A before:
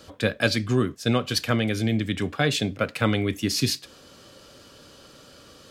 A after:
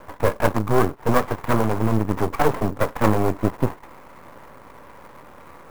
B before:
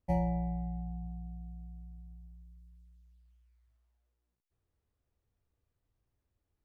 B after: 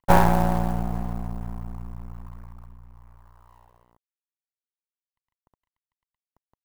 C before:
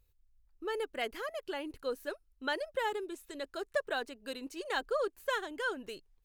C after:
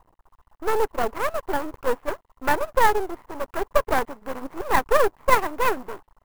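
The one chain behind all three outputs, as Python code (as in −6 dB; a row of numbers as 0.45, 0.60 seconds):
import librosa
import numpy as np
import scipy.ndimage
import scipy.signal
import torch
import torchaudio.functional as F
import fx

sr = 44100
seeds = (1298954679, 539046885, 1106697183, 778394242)

y = fx.cvsd(x, sr, bps=16000)
y = fx.dynamic_eq(y, sr, hz=430.0, q=2.9, threshold_db=-41.0, ratio=4.0, max_db=5)
y = fx.lowpass_res(y, sr, hz=1000.0, q=4.8)
y = np.maximum(y, 0.0)
y = fx.clock_jitter(y, sr, seeds[0], jitter_ms=0.022)
y = y * 10.0 ** (-2 / 20.0) / np.max(np.abs(y))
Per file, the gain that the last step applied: +7.0, +15.5, +12.5 decibels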